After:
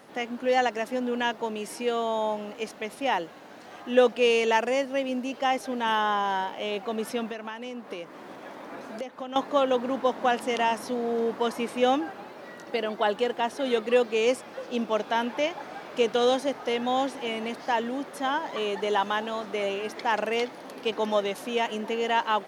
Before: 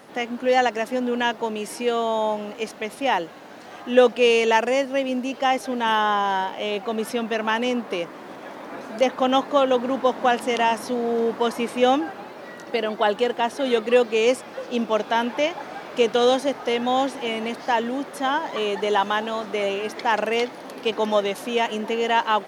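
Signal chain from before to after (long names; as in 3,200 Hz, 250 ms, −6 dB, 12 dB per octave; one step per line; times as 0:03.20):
0:07.30–0:09.36: downward compressor 12 to 1, threshold −28 dBFS, peak gain reduction 15 dB
level −4.5 dB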